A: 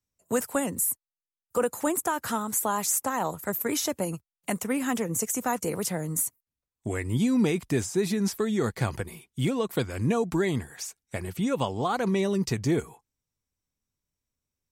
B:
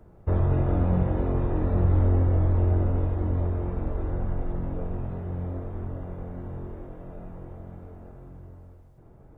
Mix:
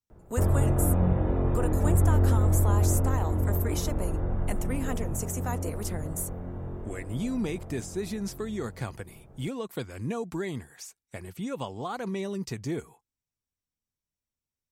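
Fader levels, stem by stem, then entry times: −7.0, −0.5 decibels; 0.00, 0.10 seconds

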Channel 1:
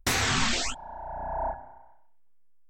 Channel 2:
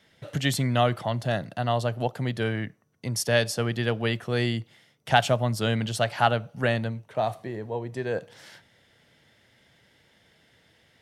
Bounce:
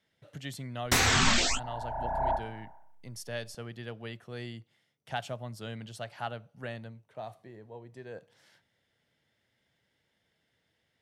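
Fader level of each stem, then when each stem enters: +1.5, −15.0 decibels; 0.85, 0.00 seconds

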